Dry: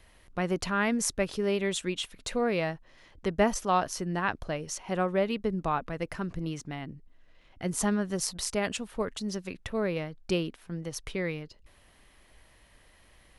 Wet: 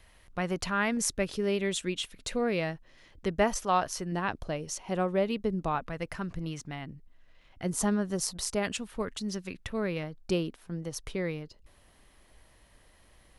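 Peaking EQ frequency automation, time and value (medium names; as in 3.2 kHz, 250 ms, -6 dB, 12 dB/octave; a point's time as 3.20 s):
peaking EQ -4 dB 1.4 oct
320 Hz
from 0.97 s 930 Hz
from 3.39 s 250 Hz
from 4.12 s 1.6 kHz
from 5.75 s 350 Hz
from 7.63 s 2.3 kHz
from 8.63 s 620 Hz
from 10.03 s 2.3 kHz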